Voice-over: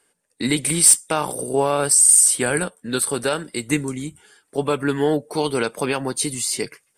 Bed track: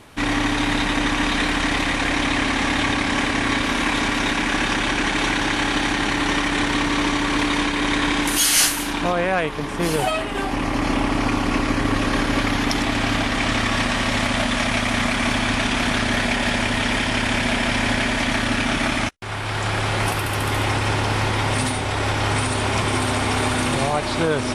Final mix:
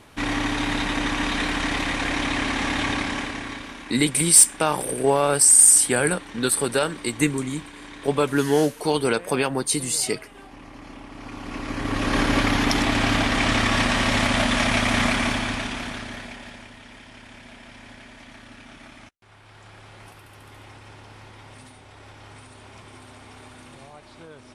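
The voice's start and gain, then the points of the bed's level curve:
3.50 s, 0.0 dB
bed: 2.99 s -4 dB
3.94 s -20.5 dB
11.09 s -20.5 dB
12.21 s 0 dB
15.09 s 0 dB
16.78 s -24 dB

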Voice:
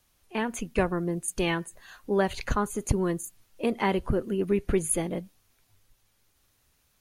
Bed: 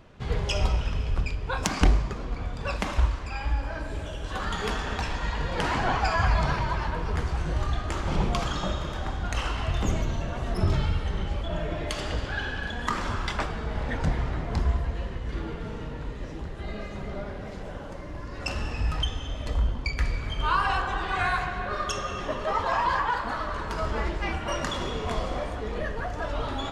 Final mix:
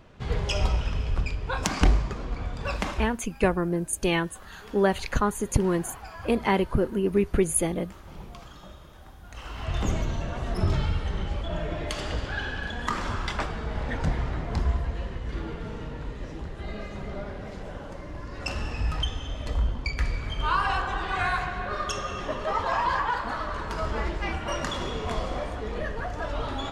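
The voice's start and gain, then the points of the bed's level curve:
2.65 s, +2.5 dB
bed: 2.89 s 0 dB
3.21 s -17 dB
9.25 s -17 dB
9.76 s -0.5 dB

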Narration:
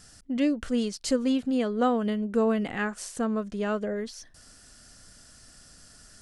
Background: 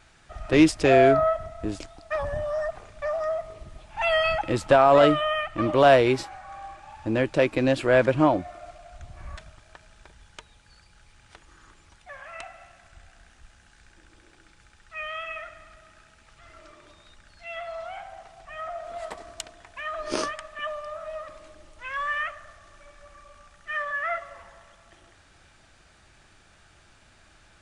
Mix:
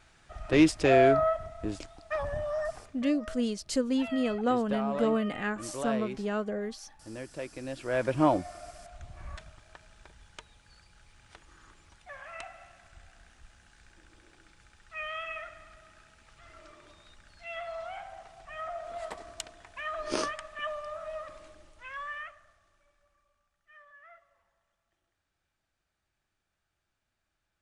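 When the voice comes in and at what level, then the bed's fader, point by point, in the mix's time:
2.65 s, -3.0 dB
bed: 2.79 s -4 dB
3.14 s -17.5 dB
7.64 s -17.5 dB
8.29 s -3 dB
21.43 s -3 dB
23.47 s -26 dB

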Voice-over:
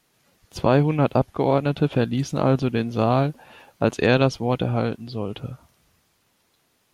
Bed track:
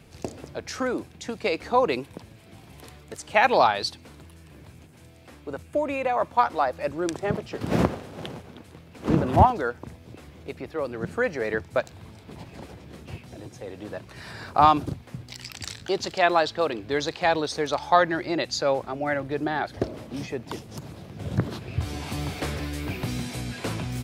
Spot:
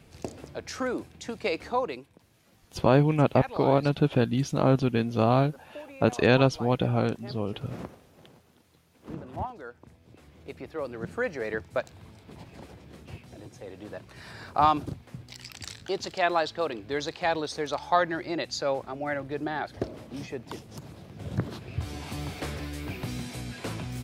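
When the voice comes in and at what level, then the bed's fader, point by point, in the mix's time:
2.20 s, -2.5 dB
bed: 1.64 s -3 dB
2.20 s -17.5 dB
9.41 s -17.5 dB
10.56 s -4.5 dB

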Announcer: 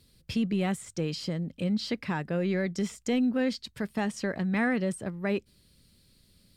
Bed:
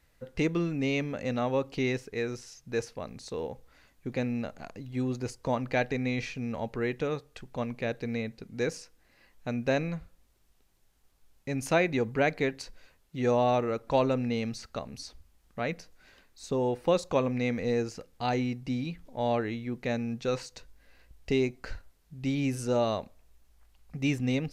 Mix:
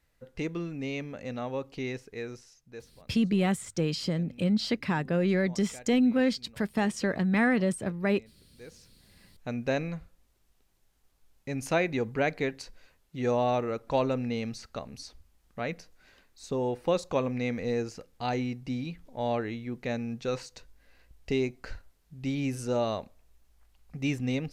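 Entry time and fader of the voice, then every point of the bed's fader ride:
2.80 s, +2.5 dB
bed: 2.32 s -5.5 dB
3.16 s -21 dB
8.58 s -21 dB
9.02 s -1.5 dB

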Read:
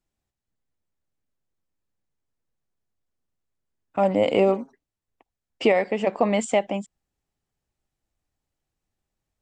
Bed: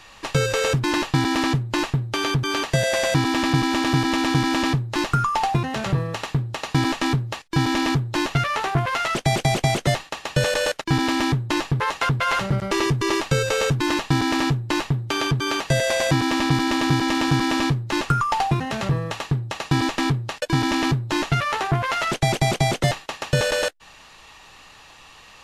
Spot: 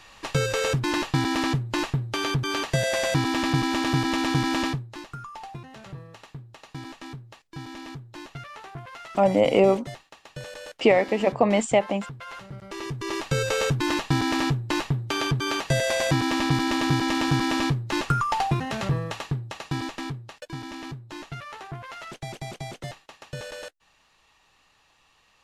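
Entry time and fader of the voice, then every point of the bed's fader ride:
5.20 s, +1.0 dB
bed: 4.63 s -3.5 dB
5.04 s -18 dB
12.52 s -18 dB
13.43 s -3 dB
19.01 s -3 dB
20.62 s -16 dB

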